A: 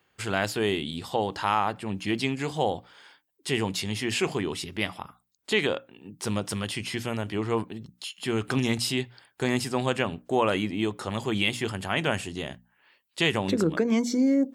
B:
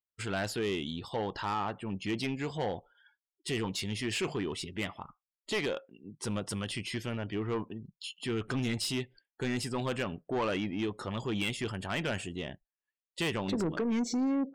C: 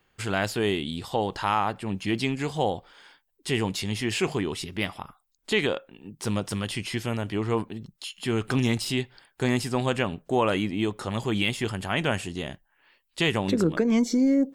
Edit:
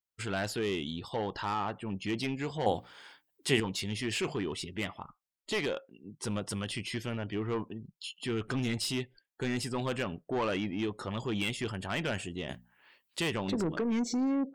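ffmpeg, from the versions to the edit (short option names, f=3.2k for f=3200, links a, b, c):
-filter_complex "[0:a]asplit=2[a][b];[1:a]asplit=3[c][d][e];[c]atrim=end=2.662[f];[a]atrim=start=2.658:end=3.602[g];[d]atrim=start=3.598:end=12.492[h];[b]atrim=start=12.488:end=13.202[i];[e]atrim=start=13.198[j];[f][g]acrossfade=d=0.004:c1=hsin:c2=hsin[k];[k][h]acrossfade=d=0.004:c1=hsin:c2=hsin[l];[l][i]acrossfade=d=0.004:c1=hsin:c2=hsin[m];[m][j]acrossfade=d=0.004:c1=hsin:c2=hsin"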